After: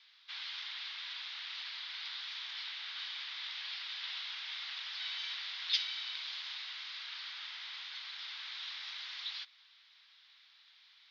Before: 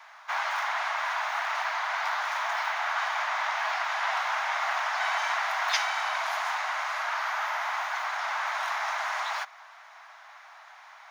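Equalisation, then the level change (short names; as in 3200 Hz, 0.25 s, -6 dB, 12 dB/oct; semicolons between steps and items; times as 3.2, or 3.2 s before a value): Butterworth band-pass 4100 Hz, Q 2.2; air absorption 200 m; +7.5 dB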